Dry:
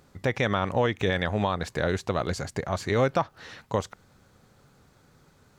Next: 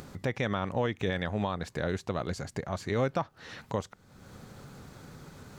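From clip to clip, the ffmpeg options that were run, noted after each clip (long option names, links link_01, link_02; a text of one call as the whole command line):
ffmpeg -i in.wav -af "equalizer=frequency=190:width_type=o:width=1.7:gain=3.5,acompressor=mode=upward:threshold=-27dB:ratio=2.5,volume=-6.5dB" out.wav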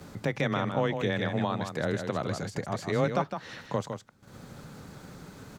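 ffmpeg -i in.wav -af "afreqshift=17,agate=range=-13dB:threshold=-50dB:ratio=16:detection=peak,aecho=1:1:158:0.447,volume=1.5dB" out.wav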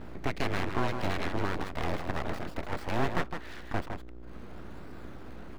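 ffmpeg -i in.wav -filter_complex "[0:a]acrossover=split=3500[link_01][link_02];[link_02]acrusher=samples=19:mix=1:aa=0.000001:lfo=1:lforange=11.4:lforate=0.97[link_03];[link_01][link_03]amix=inputs=2:normalize=0,aeval=exprs='val(0)+0.00891*(sin(2*PI*60*n/s)+sin(2*PI*2*60*n/s)/2+sin(2*PI*3*60*n/s)/3+sin(2*PI*4*60*n/s)/4+sin(2*PI*5*60*n/s)/5)':channel_layout=same,aeval=exprs='abs(val(0))':channel_layout=same" out.wav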